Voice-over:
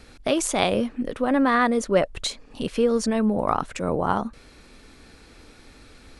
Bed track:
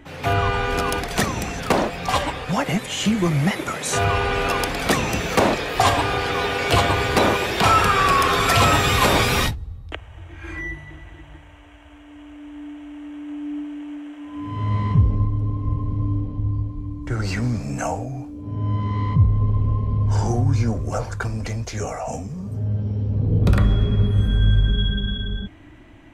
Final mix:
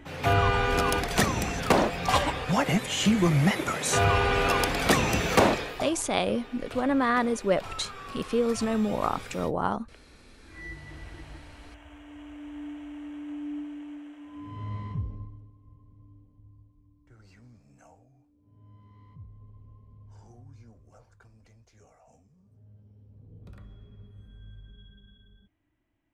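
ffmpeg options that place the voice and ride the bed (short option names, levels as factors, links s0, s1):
-filter_complex "[0:a]adelay=5550,volume=0.596[s0];[1:a]volume=9.44,afade=t=out:st=5.41:d=0.45:silence=0.0749894,afade=t=in:st=10.46:d=0.58:silence=0.0794328,afade=t=out:st=12.68:d=2.83:silence=0.0398107[s1];[s0][s1]amix=inputs=2:normalize=0"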